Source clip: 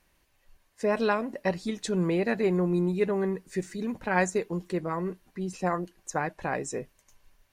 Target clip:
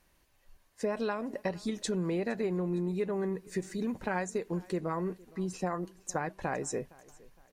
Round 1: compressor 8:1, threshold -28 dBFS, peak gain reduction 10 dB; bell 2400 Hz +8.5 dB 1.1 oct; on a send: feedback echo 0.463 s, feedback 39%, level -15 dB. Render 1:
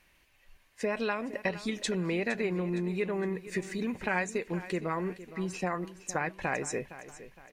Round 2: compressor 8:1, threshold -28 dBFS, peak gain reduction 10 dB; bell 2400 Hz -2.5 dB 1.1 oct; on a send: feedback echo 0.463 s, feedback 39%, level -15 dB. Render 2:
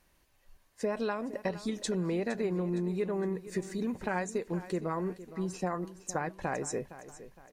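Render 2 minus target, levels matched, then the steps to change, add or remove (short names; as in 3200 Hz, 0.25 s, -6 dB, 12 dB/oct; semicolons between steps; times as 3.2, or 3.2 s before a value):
echo-to-direct +8.5 dB
change: feedback echo 0.463 s, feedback 39%, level -23.5 dB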